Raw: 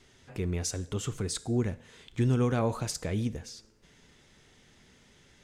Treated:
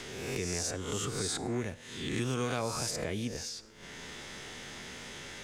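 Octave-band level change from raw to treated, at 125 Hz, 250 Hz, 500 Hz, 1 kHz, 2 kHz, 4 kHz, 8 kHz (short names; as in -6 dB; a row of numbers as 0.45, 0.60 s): -7.5, -5.0, -2.0, 0.0, +5.0, +4.5, +2.5 dB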